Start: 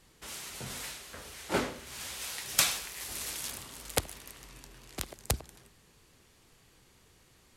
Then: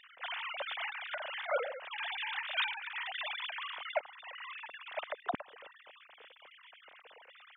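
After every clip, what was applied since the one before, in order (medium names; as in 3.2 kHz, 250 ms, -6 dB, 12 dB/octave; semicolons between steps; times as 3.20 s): formants replaced by sine waves; compression 2.5:1, threshold -47 dBFS, peak gain reduction 17 dB; trim +9 dB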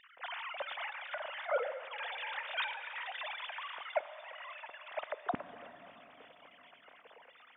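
treble shelf 2.4 kHz -9.5 dB; plate-style reverb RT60 4.9 s, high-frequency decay 0.9×, DRR 12 dB; trim +1 dB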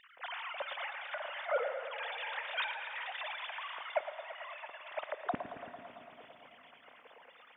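feedback echo behind a low-pass 112 ms, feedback 74%, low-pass 3.2 kHz, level -11 dB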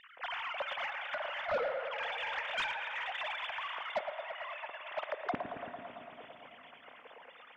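saturation -31.5 dBFS, distortion -12 dB; distance through air 51 m; trim +4 dB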